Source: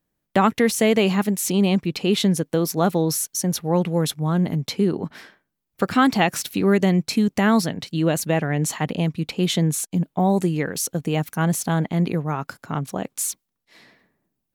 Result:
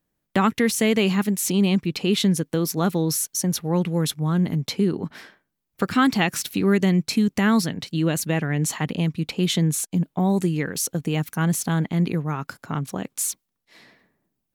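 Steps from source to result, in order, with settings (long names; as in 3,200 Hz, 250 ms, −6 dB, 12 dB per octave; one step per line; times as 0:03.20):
dynamic equaliser 660 Hz, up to −7 dB, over −35 dBFS, Q 1.3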